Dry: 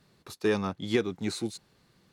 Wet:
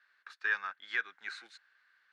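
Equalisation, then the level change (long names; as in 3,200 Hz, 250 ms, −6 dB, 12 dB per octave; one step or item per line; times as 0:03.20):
four-pole ladder band-pass 1,700 Hz, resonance 75%
+8.0 dB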